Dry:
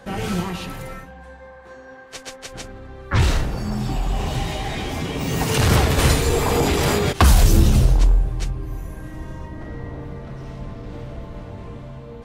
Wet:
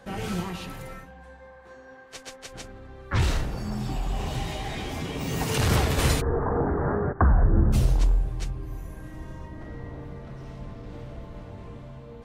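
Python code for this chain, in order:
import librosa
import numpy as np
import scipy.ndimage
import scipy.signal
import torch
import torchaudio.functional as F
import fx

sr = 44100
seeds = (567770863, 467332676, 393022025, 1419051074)

y = fx.steep_lowpass(x, sr, hz=1700.0, slope=72, at=(6.2, 7.72), fade=0.02)
y = y * 10.0 ** (-6.0 / 20.0)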